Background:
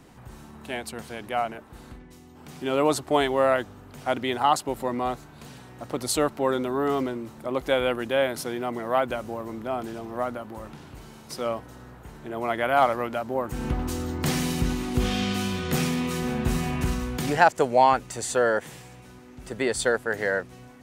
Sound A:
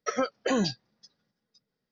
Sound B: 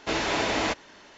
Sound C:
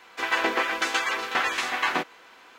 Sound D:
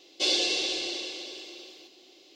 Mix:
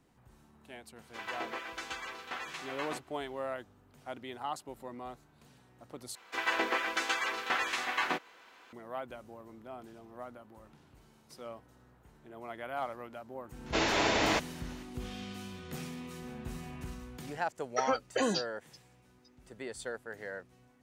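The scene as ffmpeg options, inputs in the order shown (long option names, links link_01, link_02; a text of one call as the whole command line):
ffmpeg -i bed.wav -i cue0.wav -i cue1.wav -i cue2.wav -filter_complex "[3:a]asplit=2[link_01][link_02];[0:a]volume=-16.5dB[link_03];[link_01]equalizer=frequency=1800:width_type=o:width=0.77:gain=-2[link_04];[1:a]highpass=250[link_05];[link_03]asplit=2[link_06][link_07];[link_06]atrim=end=6.154[link_08];[link_02]atrim=end=2.58,asetpts=PTS-STARTPTS,volume=-6.5dB[link_09];[link_07]atrim=start=8.726[link_10];[link_04]atrim=end=2.58,asetpts=PTS-STARTPTS,volume=-14.5dB,afade=type=in:duration=0.004:curve=hsin,afade=type=out:start_time=2.576:duration=0.004:curve=hsin,adelay=960[link_11];[2:a]atrim=end=1.17,asetpts=PTS-STARTPTS,volume=-2dB,afade=type=in:duration=0.004:curve=hsin,afade=type=out:start_time=1.166:duration=0.004:curve=hsin,adelay=13660[link_12];[link_05]atrim=end=1.91,asetpts=PTS-STARTPTS,volume=-2.5dB,afade=type=in:duration=0.004:curve=hsin,afade=type=out:start_time=1.906:duration=0.004:curve=hsin,adelay=17700[link_13];[link_08][link_09]acrossfade=duration=0.004:curve1=hsin:curve2=hsin[link_14];[link_14][link_10]acrossfade=duration=0.004:curve1=hsin:curve2=hsin[link_15];[link_15][link_11][link_12][link_13]amix=inputs=4:normalize=0" out.wav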